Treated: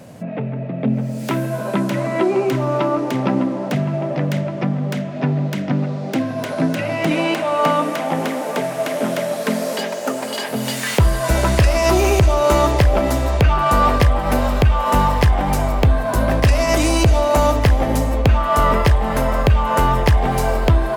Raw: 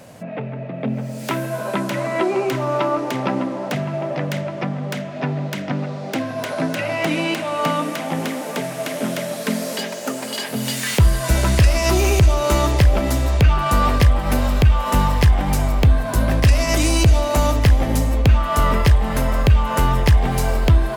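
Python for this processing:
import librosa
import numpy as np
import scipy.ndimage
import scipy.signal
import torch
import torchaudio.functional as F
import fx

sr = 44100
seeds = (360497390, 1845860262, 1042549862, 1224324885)

y = fx.peak_eq(x, sr, hz=fx.steps((0.0, 190.0), (7.11, 710.0)), db=7.0, octaves=2.6)
y = y * librosa.db_to_amplitude(-1.5)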